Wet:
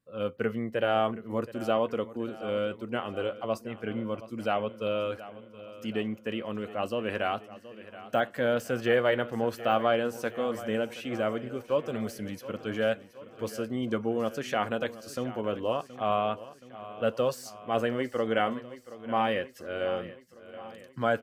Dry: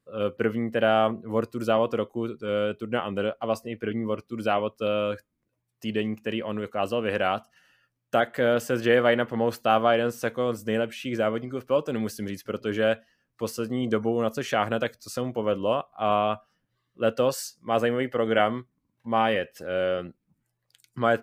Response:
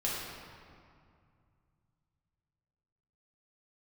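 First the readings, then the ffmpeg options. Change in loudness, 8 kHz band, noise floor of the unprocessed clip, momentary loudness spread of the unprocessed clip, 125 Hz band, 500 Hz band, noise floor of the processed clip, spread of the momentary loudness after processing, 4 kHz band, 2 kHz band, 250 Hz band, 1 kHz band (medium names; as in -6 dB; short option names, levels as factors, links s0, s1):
-4.0 dB, -6.5 dB, -79 dBFS, 9 LU, -4.5 dB, -4.0 dB, -52 dBFS, 13 LU, -4.5 dB, -4.0 dB, -4.0 dB, -4.0 dB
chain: -filter_complex "[0:a]flanger=delay=1.2:depth=2.9:regen=-72:speed=0.24:shape=sinusoidal,deesser=0.85,asplit=2[s0][s1];[s1]aecho=0:1:724|1448|2172|2896|3620|4344:0.158|0.0935|0.0552|0.0326|0.0192|0.0113[s2];[s0][s2]amix=inputs=2:normalize=0"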